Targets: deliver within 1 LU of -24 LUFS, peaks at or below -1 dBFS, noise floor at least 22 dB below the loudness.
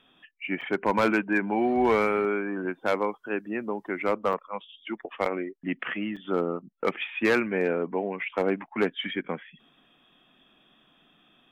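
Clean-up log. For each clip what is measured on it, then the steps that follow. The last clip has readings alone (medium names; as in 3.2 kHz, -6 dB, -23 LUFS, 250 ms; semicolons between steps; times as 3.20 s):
dropouts 4; longest dropout 5.7 ms; loudness -28.0 LUFS; peak level -15.0 dBFS; loudness target -24.0 LUFS
-> interpolate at 0.61/4.33/5.25/6.16 s, 5.7 ms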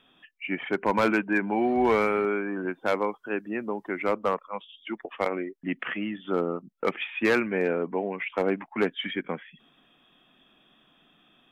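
dropouts 0; loudness -28.0 LUFS; peak level -15.0 dBFS; loudness target -24.0 LUFS
-> trim +4 dB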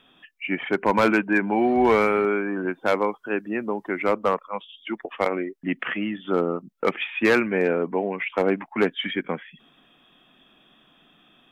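loudness -24.0 LUFS; peak level -11.0 dBFS; noise floor -59 dBFS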